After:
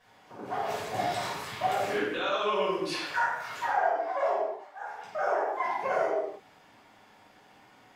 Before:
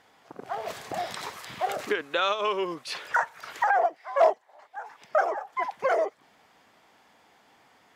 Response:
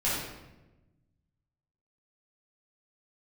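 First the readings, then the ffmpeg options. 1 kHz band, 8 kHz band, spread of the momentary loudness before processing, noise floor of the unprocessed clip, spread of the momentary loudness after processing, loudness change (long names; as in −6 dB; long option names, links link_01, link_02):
−1.5 dB, −0.5 dB, 15 LU, −61 dBFS, 10 LU, −2.5 dB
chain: -filter_complex "[0:a]alimiter=limit=-21.5dB:level=0:latency=1:release=16[link_01];[1:a]atrim=start_sample=2205,afade=type=out:start_time=0.37:duration=0.01,atrim=end_sample=16758[link_02];[link_01][link_02]afir=irnorm=-1:irlink=0,volume=-7.5dB"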